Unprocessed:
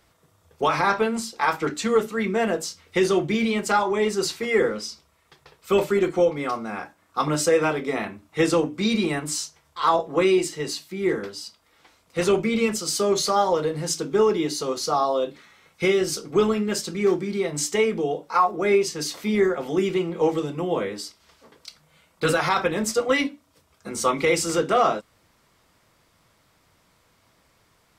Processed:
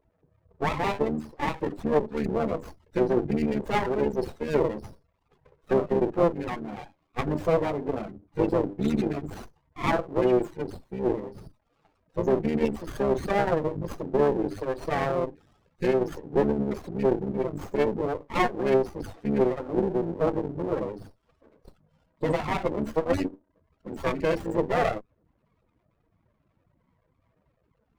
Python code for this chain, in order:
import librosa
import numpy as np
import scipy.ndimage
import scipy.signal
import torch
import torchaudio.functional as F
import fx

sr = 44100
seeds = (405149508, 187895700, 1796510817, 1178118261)

y = fx.cycle_switch(x, sr, every=3, mode='muted')
y = fx.spec_topn(y, sr, count=16)
y = fx.running_max(y, sr, window=17)